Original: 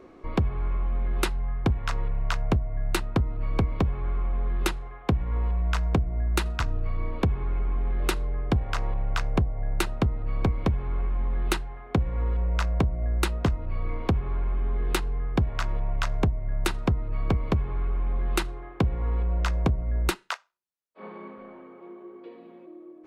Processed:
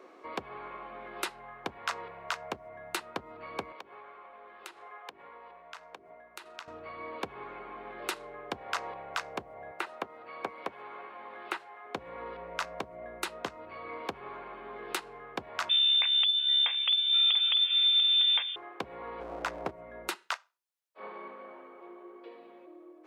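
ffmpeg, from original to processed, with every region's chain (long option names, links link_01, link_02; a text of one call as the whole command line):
ffmpeg -i in.wav -filter_complex "[0:a]asettb=1/sr,asplit=3[link_01][link_02][link_03];[link_01]atrim=end=3.724[link_04];[link_02]atrim=start=3.72:end=6.68,asetpts=PTS-STARTPTS,afade=type=in:duration=0.004:curve=qsin,afade=type=out:start_time=2.956:duration=0.004:curve=qsin,bass=frequency=250:gain=-12,treble=frequency=4000:gain=-3,bandreject=frequency=50:width_type=h:width=6,bandreject=frequency=100:width_type=h:width=6,bandreject=frequency=150:width_type=h:width=6,bandreject=frequency=200:width_type=h:width=6,bandreject=frequency=250:width_type=h:width=6,bandreject=frequency=300:width_type=h:width=6,bandreject=frequency=350:width_type=h:width=6,bandreject=frequency=400:width_type=h:width=6,acompressor=threshold=-40dB:ratio=10:attack=3.2:release=140:knee=1:detection=peak[link_05];[link_03]atrim=start=6.676[link_06];[link_04][link_05]acrossfade=duration=0.004:curve1=hsin:curve2=qsin[link_07];[link_07][link_06]acrossfade=duration=0.004:curve1=qsin:curve2=hsin,asettb=1/sr,asplit=3[link_08][link_09][link_10];[link_08]atrim=end=9.714[link_11];[link_09]atrim=start=9.71:end=11.85,asetpts=PTS-STARTPTS,afade=type=in:duration=0.004:curve=qsin,afade=type=out:start_time=2.136:duration=0.004:curve=qsin,highpass=frequency=430:poles=1,acrossover=split=2700[link_12][link_13];[link_13]acompressor=threshold=-47dB:ratio=4:attack=1:release=60[link_14];[link_12][link_14]amix=inputs=2:normalize=0[link_15];[link_10]atrim=start=11.846[link_16];[link_11][link_15]acrossfade=duration=0.004:curve1=hsin:curve2=qsin[link_17];[link_17][link_16]acrossfade=duration=0.004:curve1=qsin:curve2=hsin,asettb=1/sr,asplit=3[link_18][link_19][link_20];[link_18]atrim=end=15.694[link_21];[link_19]atrim=start=15.69:end=18.56,asetpts=PTS-STARTPTS,afade=type=in:duration=0.004:curve=qsin,afade=type=out:start_time=2.866:duration=0.004:curve=qsin,lowpass=frequency=3100:width_type=q:width=0.5098,lowpass=frequency=3100:width_type=q:width=0.6013,lowpass=frequency=3100:width_type=q:width=0.9,lowpass=frequency=3100:width_type=q:width=2.563,afreqshift=-3600,aecho=1:1:691:0.211,atrim=end_sample=126567[link_22];[link_20]atrim=start=18.556[link_23];[link_21][link_22]acrossfade=duration=0.004:curve1=hsin:curve2=qsin[link_24];[link_24][link_23]acrossfade=duration=0.004:curve1=qsin:curve2=hsin,asettb=1/sr,asplit=3[link_25][link_26][link_27];[link_25]atrim=end=19.204[link_28];[link_26]atrim=start=19.2:end=19.71,asetpts=PTS-STARTPTS,afade=type=in:duration=0.004:curve=qsin,afade=type=out:start_time=0.506:duration=0.004:curve=qsin,tiltshelf=frequency=1200:gain=6.5,asoftclip=type=hard:threshold=-15.5dB[link_29];[link_27]atrim=start=19.706[link_30];[link_28][link_29]acrossfade=duration=0.004:curve1=hsin:curve2=qsin[link_31];[link_31][link_30]acrossfade=duration=0.004:curve1=qsin:curve2=hsin,highpass=500,alimiter=limit=-19dB:level=0:latency=1:release=150,volume=1dB" out.wav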